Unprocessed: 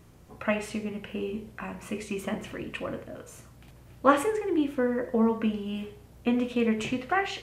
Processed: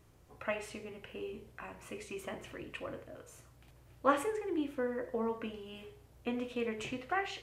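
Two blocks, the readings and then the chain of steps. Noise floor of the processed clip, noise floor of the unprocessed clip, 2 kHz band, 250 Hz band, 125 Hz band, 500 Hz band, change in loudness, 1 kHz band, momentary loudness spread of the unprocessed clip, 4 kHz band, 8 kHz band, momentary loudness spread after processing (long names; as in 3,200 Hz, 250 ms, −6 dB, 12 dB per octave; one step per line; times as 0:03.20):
−62 dBFS, −53 dBFS, −7.5 dB, −12.5 dB, −12.5 dB, −8.0 dB, −9.0 dB, −7.5 dB, 13 LU, −7.5 dB, −7.5 dB, 15 LU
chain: parametric band 200 Hz −13 dB 0.39 octaves
level −7.5 dB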